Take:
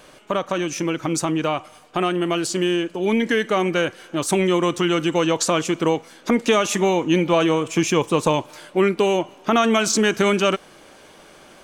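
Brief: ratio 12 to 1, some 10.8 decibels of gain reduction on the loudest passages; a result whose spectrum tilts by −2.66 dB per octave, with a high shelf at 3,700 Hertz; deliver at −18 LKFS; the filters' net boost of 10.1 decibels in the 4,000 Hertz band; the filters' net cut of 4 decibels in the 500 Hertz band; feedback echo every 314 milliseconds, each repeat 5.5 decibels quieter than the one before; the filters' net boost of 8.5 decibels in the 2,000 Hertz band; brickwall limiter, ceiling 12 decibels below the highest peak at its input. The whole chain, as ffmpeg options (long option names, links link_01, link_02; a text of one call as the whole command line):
ffmpeg -i in.wav -af "equalizer=frequency=500:width_type=o:gain=-6,equalizer=frequency=2000:width_type=o:gain=7,highshelf=frequency=3700:gain=6,equalizer=frequency=4000:width_type=o:gain=7.5,acompressor=threshold=-21dB:ratio=12,alimiter=limit=-18dB:level=0:latency=1,aecho=1:1:314|628|942|1256|1570|1884|2198:0.531|0.281|0.149|0.079|0.0419|0.0222|0.0118,volume=9dB" out.wav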